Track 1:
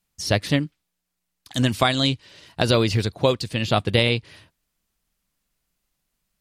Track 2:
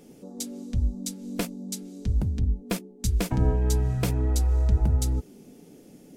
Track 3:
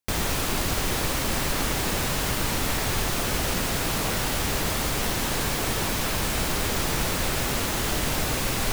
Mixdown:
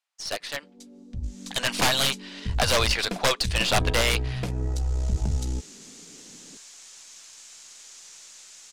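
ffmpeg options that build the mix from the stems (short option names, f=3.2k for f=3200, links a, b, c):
-filter_complex "[0:a]highpass=f=660:w=0.5412,highpass=f=660:w=1.3066,aeval=exprs='(mod(6.68*val(0)+1,2)-1)/6.68':c=same,volume=0dB,asplit=2[a][b];[1:a]adelay=400,volume=-11dB[c];[2:a]acontrast=38,bandpass=f=6.9k:t=q:w=3.1:csg=0,adelay=1150,volume=-18dB[d];[b]apad=whole_len=435497[e];[d][e]sidechaincompress=threshold=-51dB:ratio=8:attack=9.6:release=506[f];[a][c][f]amix=inputs=3:normalize=0,dynaudnorm=f=290:g=9:m=11dB,aeval=exprs='(tanh(6.31*val(0)+0.6)-tanh(0.6))/6.31':c=same,adynamicsmooth=sensitivity=2:basefreq=7.6k"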